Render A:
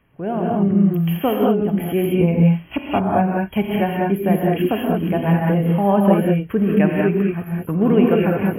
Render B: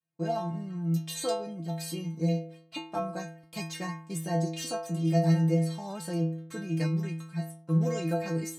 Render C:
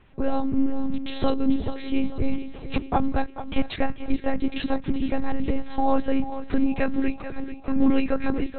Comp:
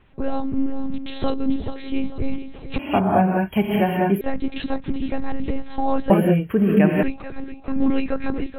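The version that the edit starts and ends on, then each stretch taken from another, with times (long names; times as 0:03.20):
C
0:02.79–0:04.21: punch in from A
0:06.10–0:07.03: punch in from A
not used: B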